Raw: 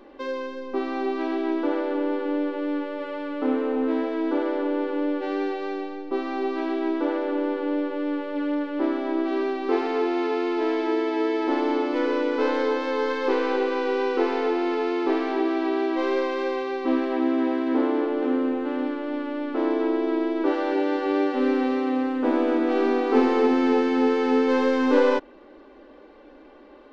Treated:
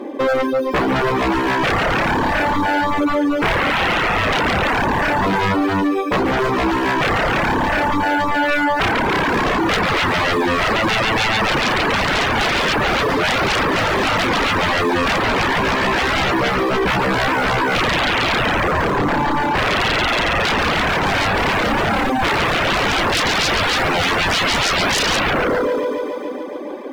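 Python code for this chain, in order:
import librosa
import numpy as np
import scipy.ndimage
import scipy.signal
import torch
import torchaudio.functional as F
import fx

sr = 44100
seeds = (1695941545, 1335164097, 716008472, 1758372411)

p1 = fx.low_shelf(x, sr, hz=300.0, db=7.0)
p2 = fx.sample_hold(p1, sr, seeds[0], rate_hz=2900.0, jitter_pct=0)
p3 = p1 + F.gain(torch.from_numpy(p2), -11.0).numpy()
p4 = scipy.signal.sosfilt(scipy.signal.butter(2, 130.0, 'highpass', fs=sr, output='sos'), p3)
p5 = fx.high_shelf(p4, sr, hz=4300.0, db=-11.5)
p6 = fx.notch_comb(p5, sr, f0_hz=1400.0)
p7 = fx.echo_thinned(p6, sr, ms=141, feedback_pct=76, hz=210.0, wet_db=-5)
p8 = fx.rev_schroeder(p7, sr, rt60_s=0.3, comb_ms=28, drr_db=11.0)
p9 = fx.fold_sine(p8, sr, drive_db=19, ceiling_db=-5.5)
p10 = fx.dereverb_blind(p9, sr, rt60_s=0.7)
y = F.gain(torch.from_numpy(p10), -7.0).numpy()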